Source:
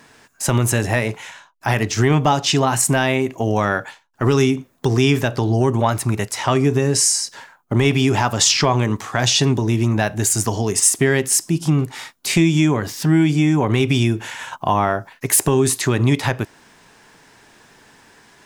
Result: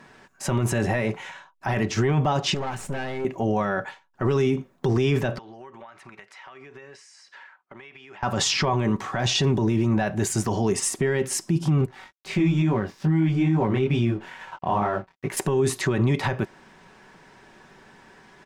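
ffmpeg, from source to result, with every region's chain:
-filter_complex "[0:a]asettb=1/sr,asplit=3[s0][s1][s2];[s0]atrim=end=2.544[s3];[s1]atrim=start=2.54:end=3.25,asetpts=PTS-STARTPTS,afade=t=in:d=0.004:c=qsin,afade=t=out:st=0.706:d=0.004:c=qsin,aeval=exprs='if(lt(val(0),0),0.447*val(0),val(0))':c=same,deesser=0.25,aeval=exprs='(tanh(17.8*val(0)+0.45)-tanh(0.45))/17.8':c=same[s4];[s2]atrim=start=3.246[s5];[s3][s4]acrossfade=d=0.004:c1=hsin:c2=qsin[s6];[s6][s5]acrossfade=d=0.004:c1=qsin:c2=hsin,asettb=1/sr,asplit=3[s7][s8][s9];[s7]atrim=end=5.384[s10];[s8]atrim=start=5.38:end=8.23,asetpts=PTS-STARTPTS,afade=t=in:d=0.004:c=qsin,afade=t=out:st=2.846:d=0.004:c=qsin,bandpass=f=2000:t=q:w=1.1,acompressor=threshold=0.0112:ratio=16:attack=3.2:release=140:knee=1:detection=peak[s11];[s9]atrim=start=8.226[s12];[s10][s11]acrossfade=d=0.004:c1=hsin:c2=qsin[s13];[s13][s12]acrossfade=d=0.004:c1=qsin:c2=hsin,asettb=1/sr,asplit=3[s14][s15][s16];[s14]atrim=end=11.864[s17];[s15]atrim=start=11.86:end=15.37,asetpts=PTS-STARTPTS,afade=t=in:d=0.004:c=qsin,afade=t=out:st=3.506:d=0.004:c=qsin,highshelf=f=4800:g=-10,aeval=exprs='sgn(val(0))*max(abs(val(0))-0.00944,0)':c=same,flanger=delay=17.5:depth=5.6:speed=2.3[s18];[s16]atrim=start=15.366[s19];[s17][s18]acrossfade=d=0.004:c1=hsin:c2=qsin[s20];[s20][s19]acrossfade=d=0.004:c1=qsin:c2=hsin,lowpass=f=2000:p=1,aecho=1:1:5.3:0.38,alimiter=limit=0.2:level=0:latency=1:release=11"

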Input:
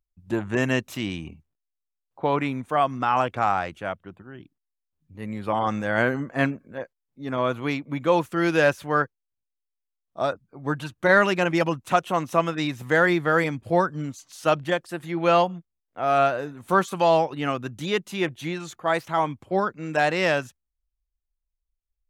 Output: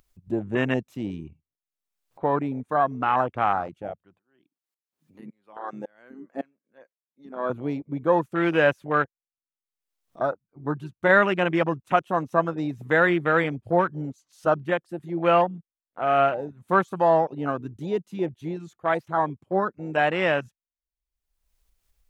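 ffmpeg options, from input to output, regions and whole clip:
-filter_complex "[0:a]asettb=1/sr,asplit=3[s0][s1][s2];[s0]atrim=end=4.194[s3];[s1]atrim=start=4.19:end=7.5,asetpts=PTS-STARTPTS,afade=t=in:d=0.004:c=qsin,afade=t=out:st=3.306:d=0.004:c=qsin,highpass=250,aeval=exprs='val(0)*pow(10,-23*if(lt(mod(-1.8*n/s,1),2*abs(-1.8)/1000),1-mod(-1.8*n/s,1)/(2*abs(-1.8)/1000),(mod(-1.8*n/s,1)-2*abs(-1.8)/1000)/(1-2*abs(-1.8)/1000))/20)':c=same[s4];[s2]atrim=start=7.496[s5];[s3][s4]acrossfade=d=0.004:c1=hsin:c2=qsin[s6];[s6][s5]acrossfade=d=0.004:c1=qsin:c2=hsin,afwtdn=0.0447,lowshelf=f=68:g=-8,acompressor=mode=upward:threshold=0.0112:ratio=2.5"

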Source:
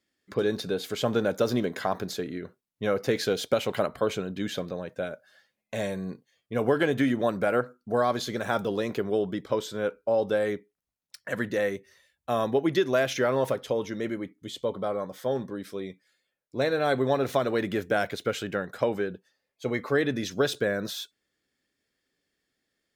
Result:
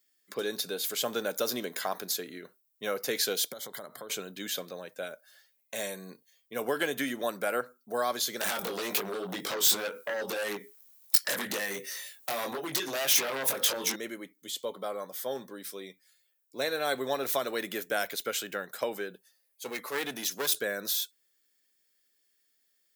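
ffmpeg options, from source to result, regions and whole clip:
-filter_complex "[0:a]asettb=1/sr,asplit=3[s0][s1][s2];[s0]atrim=end=3.524[s3];[s1]atrim=start=3.52:end=4.1,asetpts=PTS-STARTPTS,afade=t=in:d=0.004:c=qsin,afade=t=out:st=0.576:d=0.004:c=qsin,equalizer=f=74:w=0.31:g=7,acompressor=threshold=0.02:ratio=5:attack=3.2:release=140:knee=1:detection=peak,asuperstop=centerf=2600:order=8:qfactor=2.8[s4];[s2]atrim=start=4.096[s5];[s3][s4]acrossfade=d=0.004:c1=hsin:c2=qsin[s6];[s6][s5]acrossfade=d=0.004:c1=qsin:c2=hsin,asettb=1/sr,asplit=3[s7][s8][s9];[s7]atrim=end=8.414[s10];[s8]atrim=start=8.41:end=13.96,asetpts=PTS-STARTPTS,afade=t=in:d=0.004:c=qsin,afade=t=out:st=5.546:d=0.004:c=qsin,acompressor=threshold=0.0141:ratio=12:attack=3.2:release=140:knee=1:detection=peak,flanger=delay=20:depth=2.4:speed=1.9,aeval=exprs='0.0631*sin(PI/2*7.08*val(0)/0.0631)':c=same[s11];[s9]atrim=start=13.956[s12];[s10][s11]acrossfade=d=0.004:c1=hsin:c2=qsin[s13];[s13][s12]acrossfade=d=0.004:c1=qsin:c2=hsin,asettb=1/sr,asplit=3[s14][s15][s16];[s14]atrim=end=19.144[s17];[s15]atrim=start=19.14:end=20.59,asetpts=PTS-STARTPTS,afade=t=in:d=0.004:c=qsin,afade=t=out:st=1.446:d=0.004:c=qsin,equalizer=f=11000:t=o:w=0.54:g=6.5,aeval=exprs='clip(val(0),-1,0.0335)':c=same[s18];[s16]atrim=start=20.586[s19];[s17][s18]acrossfade=d=0.004:c1=hsin:c2=qsin[s20];[s20][s19]acrossfade=d=0.004:c1=qsin:c2=hsin,highpass=f=130:w=0.5412,highpass=f=130:w=1.3066,aemphasis=mode=production:type=riaa,volume=0.631"

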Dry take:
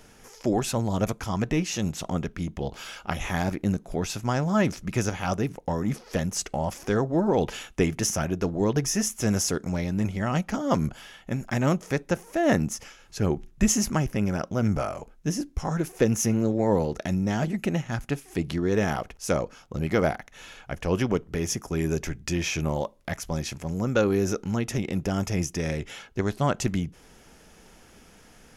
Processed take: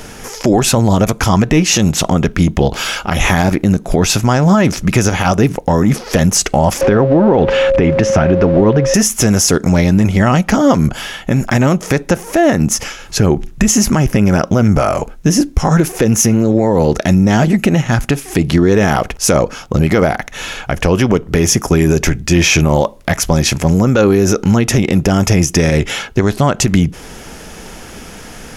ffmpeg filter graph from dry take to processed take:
-filter_complex "[0:a]asettb=1/sr,asplit=3[s0][s1][s2];[s0]atrim=end=6.814[s3];[s1]atrim=start=6.81:end=8.94,asetpts=PTS-STARTPTS,afade=t=in:d=0.004:c=qsin,afade=t=out:st=2.126:d=0.004:c=qsin,aeval=exprs='val(0)+0.5*0.0133*sgn(val(0))':c=same,lowpass=2500,aeval=exprs='val(0)+0.0355*sin(2*PI*540*n/s)':c=same[s4];[s2]atrim=start=8.936[s5];[s3][s4]acrossfade=d=0.004:c1=hsin:c2=qsin[s6];[s6][s5]acrossfade=d=0.004:c1=qsin:c2=hsin,acompressor=threshold=0.0501:ratio=5,alimiter=level_in=11.9:limit=0.891:release=50:level=0:latency=1,volume=0.891"

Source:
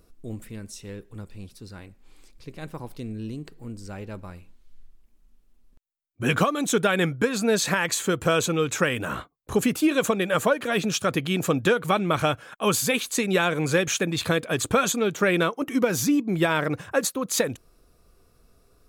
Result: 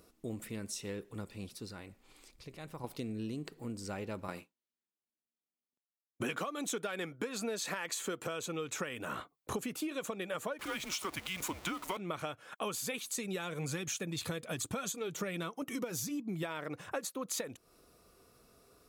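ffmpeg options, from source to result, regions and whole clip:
-filter_complex "[0:a]asettb=1/sr,asplit=3[s0][s1][s2];[s0]atrim=end=1.654[s3];[s1]atrim=start=1.65:end=2.84,asetpts=PTS-STARTPTS,afade=t=in:d=0.004:c=qsin,afade=t=out:st=1.186:d=0.004:c=qsin,asubboost=boost=7.5:cutoff=120,acompressor=threshold=0.00891:ratio=2.5:attack=3.2:release=140:knee=1:detection=peak[s4];[s2]atrim=start=2.836[s5];[s3][s4]acrossfade=d=0.004:c1=hsin:c2=qsin[s6];[s6][s5]acrossfade=d=0.004:c1=qsin:c2=hsin,asettb=1/sr,asplit=3[s7][s8][s9];[s7]atrim=end=4.284[s10];[s8]atrim=start=4.28:end=8.27,asetpts=PTS-STARTPTS,afade=t=in:d=0.004:c=qsin,afade=t=out:st=3.986:d=0.004:c=qsin,highpass=190,agate=range=0.0224:threshold=0.00282:ratio=3:release=100:detection=peak,acontrast=75[s11];[s9]atrim=start=8.266[s12];[s10][s11]acrossfade=d=0.004:c1=hsin:c2=qsin[s13];[s13][s12]acrossfade=d=0.004:c1=qsin:c2=hsin,asettb=1/sr,asplit=3[s14][s15][s16];[s14]atrim=end=10.594[s17];[s15]atrim=start=10.59:end=11.97,asetpts=PTS-STARTPTS,afade=t=in:d=0.004:c=qsin,afade=t=out:st=1.376:d=0.004:c=qsin,aeval=exprs='val(0)+0.5*0.0376*sgn(val(0))':c=same,highpass=f=530:p=1,afreqshift=-190[s18];[s16]atrim=start=11.966[s19];[s17][s18]acrossfade=d=0.004:c1=hsin:c2=qsin[s20];[s20][s19]acrossfade=d=0.004:c1=qsin:c2=hsin,asettb=1/sr,asplit=3[s21][s22][s23];[s21]atrim=end=12.984[s24];[s22]atrim=start=12.98:end=16.43,asetpts=PTS-STARTPTS,afade=t=in:d=0.004:c=qsin,afade=t=out:st=3.446:d=0.004:c=qsin,bass=f=250:g=8,treble=f=4000:g=6,flanger=delay=0.8:depth=1.7:regen=-64:speed=1.2:shape=triangular,acompressor=mode=upward:threshold=0.0316:ratio=2.5:attack=3.2:release=140:knee=2.83:detection=peak[s25];[s23]atrim=start=16.426[s26];[s24][s25]acrossfade=d=0.004:c1=hsin:c2=qsin[s27];[s27][s26]acrossfade=d=0.004:c1=qsin:c2=hsin,highpass=f=220:p=1,bandreject=f=1600:w=17,acompressor=threshold=0.0158:ratio=10,volume=1.12"

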